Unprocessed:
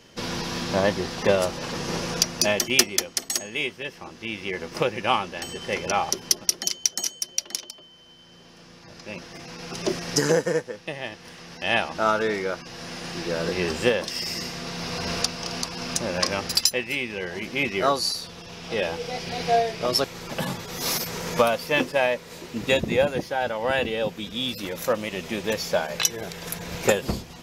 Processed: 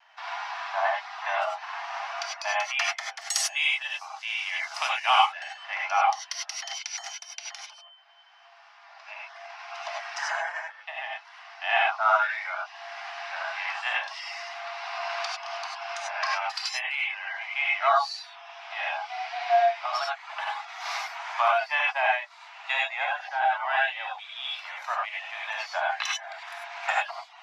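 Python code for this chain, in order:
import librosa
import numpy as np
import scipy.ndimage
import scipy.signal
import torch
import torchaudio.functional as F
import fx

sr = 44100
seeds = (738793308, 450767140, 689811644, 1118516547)

y = scipy.signal.sosfilt(scipy.signal.butter(16, 680.0, 'highpass', fs=sr, output='sos'), x)
y = fx.dereverb_blind(y, sr, rt60_s=0.65)
y = fx.lowpass(y, sr, hz=fx.steps((0.0, 1900.0), (3.21, 8000.0), (5.22, 2300.0)), slope=12)
y = fx.vibrato(y, sr, rate_hz=0.31, depth_cents=9.5)
y = fx.rev_gated(y, sr, seeds[0], gate_ms=120, shape='rising', drr_db=-2.5)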